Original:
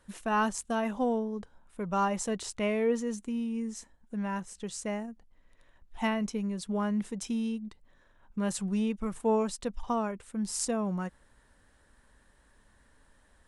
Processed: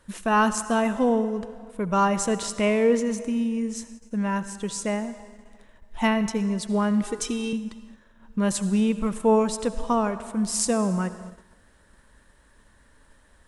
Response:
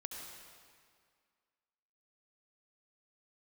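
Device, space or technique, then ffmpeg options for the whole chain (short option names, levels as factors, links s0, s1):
keyed gated reverb: -filter_complex "[0:a]asplit=3[s0][s1][s2];[1:a]atrim=start_sample=2205[s3];[s1][s3]afir=irnorm=-1:irlink=0[s4];[s2]apad=whole_len=594225[s5];[s4][s5]sidechaingate=range=0.2:threshold=0.00112:ratio=16:detection=peak,volume=0.562[s6];[s0][s6]amix=inputs=2:normalize=0,bandreject=f=760:w=12,asettb=1/sr,asplit=3[s7][s8][s9];[s7]atrim=end=7.034[s10];[s8]atrim=start=7.03:end=7.53,asetpts=PTS-STARTPTS,afade=t=in:d=0.004:c=qsin,afade=t=out:st=0.496:d=0.004:c=qsin,aecho=1:1:2.6:0.92,atrim=end_sample=22050[s11];[s9]atrim=start=7.526[s12];[s10][s11]acrossfade=d=0.004:c1=hsin:c2=qsin[s13];[s13][s12]acrossfade=d=0.004:c1=qsin:c2=hsin,volume=1.78"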